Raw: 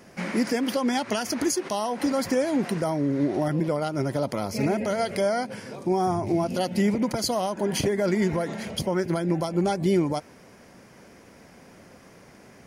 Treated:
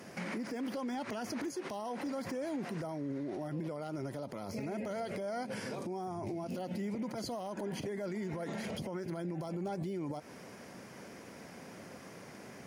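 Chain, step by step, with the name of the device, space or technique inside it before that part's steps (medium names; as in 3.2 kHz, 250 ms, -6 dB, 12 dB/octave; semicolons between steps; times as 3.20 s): podcast mastering chain (high-pass 100 Hz; de-esser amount 100%; compression 4:1, threshold -31 dBFS, peak gain reduction 11.5 dB; peak limiter -31.5 dBFS, peak gain reduction 11 dB; trim +1 dB; MP3 128 kbps 48 kHz)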